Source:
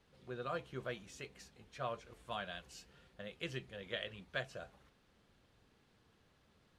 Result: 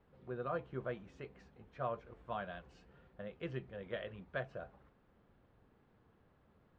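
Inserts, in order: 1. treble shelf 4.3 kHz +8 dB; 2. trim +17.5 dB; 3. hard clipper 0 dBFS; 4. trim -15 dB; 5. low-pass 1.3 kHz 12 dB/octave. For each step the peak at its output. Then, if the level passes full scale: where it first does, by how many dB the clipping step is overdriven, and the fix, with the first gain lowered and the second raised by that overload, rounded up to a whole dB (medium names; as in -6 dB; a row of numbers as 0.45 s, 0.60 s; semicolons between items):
-22.0 dBFS, -4.5 dBFS, -4.5 dBFS, -19.5 dBFS, -25.0 dBFS; nothing clips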